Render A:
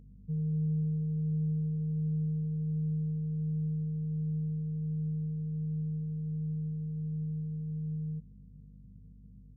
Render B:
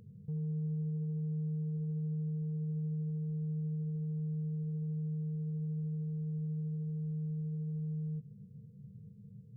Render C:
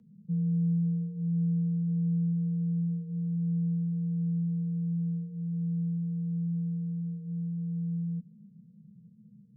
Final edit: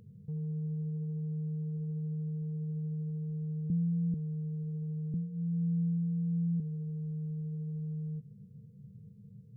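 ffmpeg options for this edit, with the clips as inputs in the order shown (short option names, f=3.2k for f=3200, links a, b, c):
-filter_complex "[2:a]asplit=2[a][b];[1:a]asplit=3[c][d][e];[c]atrim=end=3.702[f];[a]atrim=start=3.698:end=4.142[g];[d]atrim=start=4.138:end=5.142[h];[b]atrim=start=5.138:end=6.602[i];[e]atrim=start=6.598[j];[f][g]acrossfade=d=0.004:c1=hsin:c2=hsin[k];[k][h]acrossfade=d=0.004:c1=hsin:c2=hsin[l];[l][i]acrossfade=d=0.004:c1=hsin:c2=hsin[m];[m][j]acrossfade=d=0.004:c1=hsin:c2=hsin"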